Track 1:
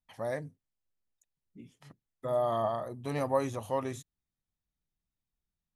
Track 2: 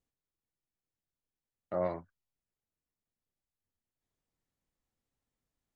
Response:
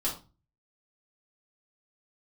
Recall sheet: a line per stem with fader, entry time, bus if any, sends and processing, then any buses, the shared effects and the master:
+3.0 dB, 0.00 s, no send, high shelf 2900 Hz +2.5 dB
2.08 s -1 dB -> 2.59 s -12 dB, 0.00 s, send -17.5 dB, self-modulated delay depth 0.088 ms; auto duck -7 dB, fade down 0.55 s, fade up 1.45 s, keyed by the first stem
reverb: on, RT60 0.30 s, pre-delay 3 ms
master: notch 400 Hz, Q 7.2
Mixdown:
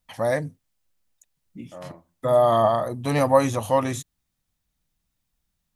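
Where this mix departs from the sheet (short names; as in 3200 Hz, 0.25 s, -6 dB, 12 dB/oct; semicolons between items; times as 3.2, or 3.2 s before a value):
stem 1 +3.0 dB -> +11.5 dB; stem 2: send -17.5 dB -> -23.5 dB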